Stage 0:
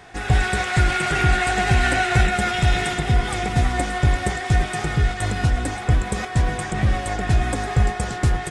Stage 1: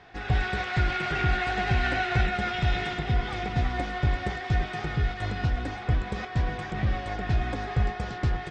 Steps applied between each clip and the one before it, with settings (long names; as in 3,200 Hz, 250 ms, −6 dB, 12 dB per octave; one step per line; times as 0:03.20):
low-pass filter 5,000 Hz 24 dB per octave
level −7 dB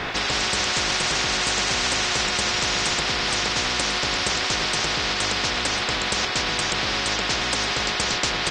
every bin compressed towards the loudest bin 10 to 1
level +5 dB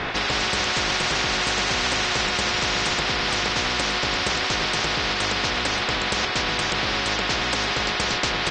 high-frequency loss of the air 80 metres
level +1.5 dB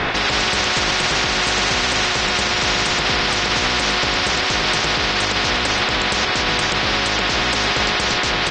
brickwall limiter −16 dBFS, peak gain reduction 7 dB
level +7 dB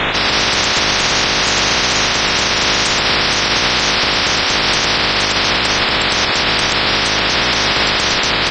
spectral magnitudes quantised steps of 30 dB
level +4.5 dB